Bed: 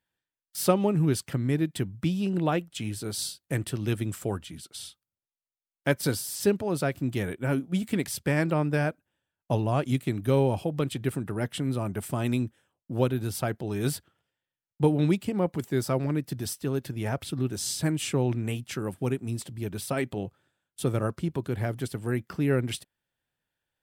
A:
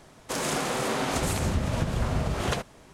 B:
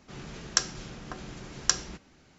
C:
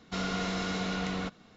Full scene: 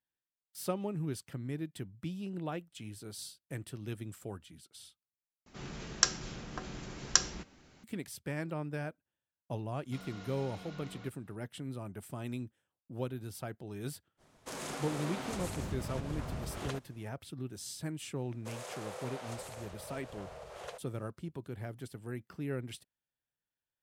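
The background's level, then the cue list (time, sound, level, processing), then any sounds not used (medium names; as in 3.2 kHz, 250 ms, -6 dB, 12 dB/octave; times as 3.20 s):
bed -12.5 dB
5.46 s: replace with B -1.5 dB
9.80 s: add C -17 dB
14.17 s: add A -12.5 dB, fades 0.05 s
18.16 s: add A -18 dB + resonant low shelf 370 Hz -10.5 dB, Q 3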